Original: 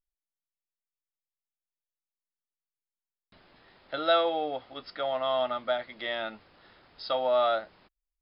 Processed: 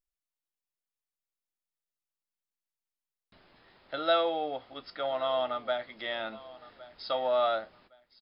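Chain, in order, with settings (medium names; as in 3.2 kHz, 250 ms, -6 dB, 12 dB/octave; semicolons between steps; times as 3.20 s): feedback comb 55 Hz, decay 0.19 s, harmonics all, mix 40%; feedback delay 1113 ms, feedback 28%, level -19 dB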